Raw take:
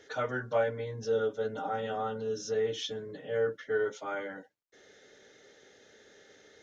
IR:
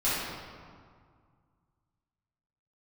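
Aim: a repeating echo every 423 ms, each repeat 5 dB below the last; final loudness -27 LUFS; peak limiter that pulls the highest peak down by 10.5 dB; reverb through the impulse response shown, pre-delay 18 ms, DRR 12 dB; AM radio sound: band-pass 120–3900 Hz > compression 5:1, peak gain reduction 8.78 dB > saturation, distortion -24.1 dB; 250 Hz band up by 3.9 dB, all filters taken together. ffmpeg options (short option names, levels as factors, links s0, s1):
-filter_complex "[0:a]equalizer=f=250:t=o:g=5,alimiter=level_in=1.33:limit=0.0631:level=0:latency=1,volume=0.75,aecho=1:1:423|846|1269|1692|2115|2538|2961:0.562|0.315|0.176|0.0988|0.0553|0.031|0.0173,asplit=2[s0][s1];[1:a]atrim=start_sample=2205,adelay=18[s2];[s1][s2]afir=irnorm=-1:irlink=0,volume=0.0631[s3];[s0][s3]amix=inputs=2:normalize=0,highpass=120,lowpass=3900,acompressor=threshold=0.0141:ratio=5,asoftclip=threshold=0.0299,volume=5.62"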